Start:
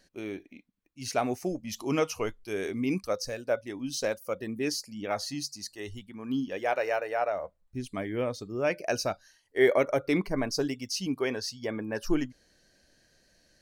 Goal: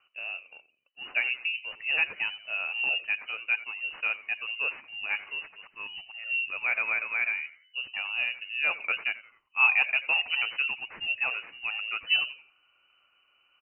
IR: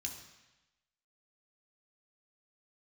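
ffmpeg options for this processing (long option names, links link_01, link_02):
-filter_complex "[0:a]asplit=2[link_01][link_02];[link_02]acrusher=samples=11:mix=1:aa=0.000001,volume=-11dB[link_03];[link_01][link_03]amix=inputs=2:normalize=0,lowpass=frequency=2600:width_type=q:width=0.5098,lowpass=frequency=2600:width_type=q:width=0.6013,lowpass=frequency=2600:width_type=q:width=0.9,lowpass=frequency=2600:width_type=q:width=2.563,afreqshift=-3000,asplit=4[link_04][link_05][link_06][link_07];[link_05]adelay=87,afreqshift=-110,volume=-17.5dB[link_08];[link_06]adelay=174,afreqshift=-220,volume=-26.6dB[link_09];[link_07]adelay=261,afreqshift=-330,volume=-35.7dB[link_10];[link_04][link_08][link_09][link_10]amix=inputs=4:normalize=0,volume=-2dB"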